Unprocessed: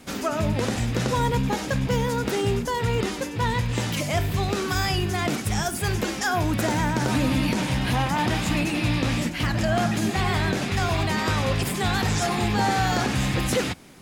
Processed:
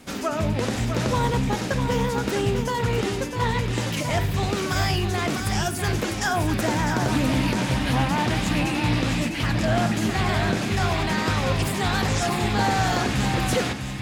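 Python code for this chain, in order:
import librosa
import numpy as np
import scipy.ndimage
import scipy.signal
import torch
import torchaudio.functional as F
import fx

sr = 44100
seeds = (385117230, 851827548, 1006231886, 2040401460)

y = x + 10.0 ** (-7.0 / 20.0) * np.pad(x, (int(652 * sr / 1000.0), 0))[:len(x)]
y = fx.doppler_dist(y, sr, depth_ms=0.16)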